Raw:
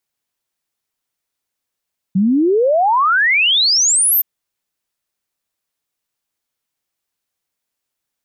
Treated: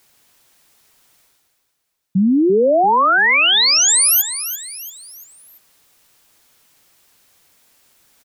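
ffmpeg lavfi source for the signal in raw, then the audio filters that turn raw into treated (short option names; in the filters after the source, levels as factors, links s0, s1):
-f lavfi -i "aevalsrc='0.299*clip(min(t,2.07-t)/0.01,0,1)*sin(2*PI*180*2.07/log(14000/180)*(exp(log(14000/180)*t/2.07)-1))':d=2.07:s=44100"
-af "areverse,acompressor=mode=upward:threshold=0.0141:ratio=2.5,areverse,aecho=1:1:341|682|1023|1364:0.266|0.117|0.0515|0.0227"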